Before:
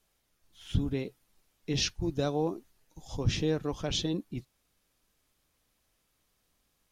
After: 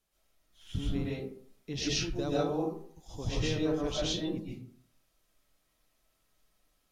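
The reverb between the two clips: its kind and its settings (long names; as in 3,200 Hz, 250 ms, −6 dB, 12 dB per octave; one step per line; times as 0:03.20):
comb and all-pass reverb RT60 0.55 s, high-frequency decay 0.5×, pre-delay 90 ms, DRR −6.5 dB
level −7 dB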